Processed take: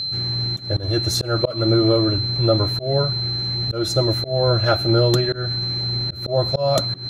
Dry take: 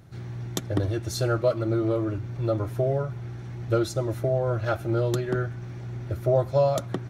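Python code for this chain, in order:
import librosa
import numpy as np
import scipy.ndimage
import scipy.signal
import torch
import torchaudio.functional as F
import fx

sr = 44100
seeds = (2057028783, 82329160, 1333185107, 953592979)

y = x + 10.0 ** (-31.0 / 20.0) * np.sin(2.0 * np.pi * 4100.0 * np.arange(len(x)) / sr)
y = fx.auto_swell(y, sr, attack_ms=194.0)
y = F.gain(torch.from_numpy(y), 8.0).numpy()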